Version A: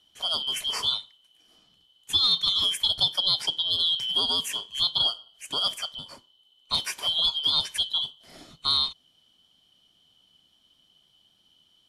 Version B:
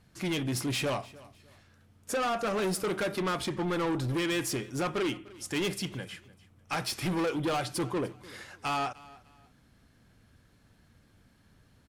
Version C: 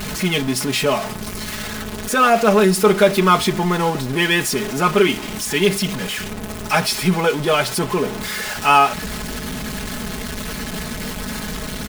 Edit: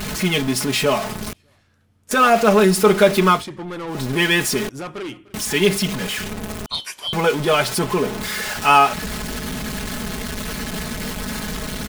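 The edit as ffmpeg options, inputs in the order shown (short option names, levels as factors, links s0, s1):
-filter_complex "[1:a]asplit=3[s0][s1][s2];[2:a]asplit=5[s3][s4][s5][s6][s7];[s3]atrim=end=1.332[s8];[s0]atrim=start=1.328:end=2.112[s9];[s4]atrim=start=2.108:end=3.45[s10];[s1]atrim=start=3.29:end=4.03[s11];[s5]atrim=start=3.87:end=4.692[s12];[s2]atrim=start=4.688:end=5.342[s13];[s6]atrim=start=5.338:end=6.662[s14];[0:a]atrim=start=6.658:end=7.132[s15];[s7]atrim=start=7.128[s16];[s8][s9]acrossfade=d=0.004:c1=hsin:c2=hsin[s17];[s17][s10]acrossfade=d=0.004:c1=hsin:c2=hsin[s18];[s18][s11]acrossfade=d=0.16:c1=tri:c2=tri[s19];[s19][s12]acrossfade=d=0.16:c1=tri:c2=tri[s20];[s20][s13]acrossfade=d=0.004:c1=hsin:c2=hsin[s21];[s21][s14]acrossfade=d=0.004:c1=hsin:c2=hsin[s22];[s22][s15]acrossfade=d=0.004:c1=hsin:c2=hsin[s23];[s23][s16]acrossfade=d=0.004:c1=hsin:c2=hsin"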